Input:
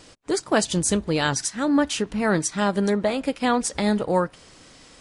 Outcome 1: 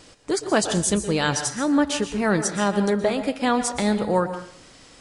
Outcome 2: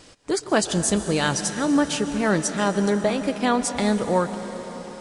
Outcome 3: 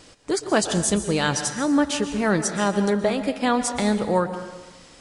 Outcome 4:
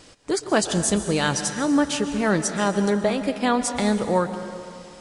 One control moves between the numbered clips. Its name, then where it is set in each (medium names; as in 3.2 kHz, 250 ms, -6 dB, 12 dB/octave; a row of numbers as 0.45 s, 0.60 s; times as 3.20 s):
plate-style reverb, RT60: 0.51 s, 5.3 s, 1.1 s, 2.3 s